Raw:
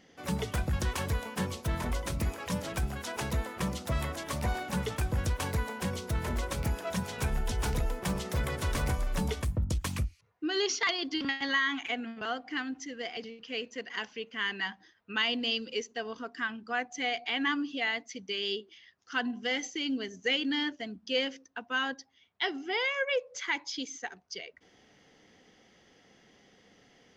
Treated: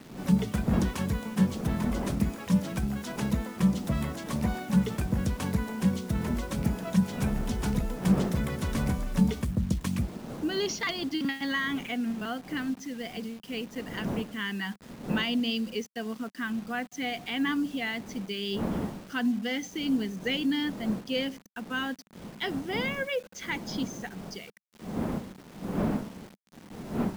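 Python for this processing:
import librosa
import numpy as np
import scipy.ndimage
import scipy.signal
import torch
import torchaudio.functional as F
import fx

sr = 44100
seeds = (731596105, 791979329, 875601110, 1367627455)

y = fx.dmg_wind(x, sr, seeds[0], corner_hz=640.0, level_db=-43.0)
y = fx.quant_dither(y, sr, seeds[1], bits=8, dither='none')
y = fx.peak_eq(y, sr, hz=200.0, db=15.0, octaves=0.94)
y = y * 10.0 ** (-2.5 / 20.0)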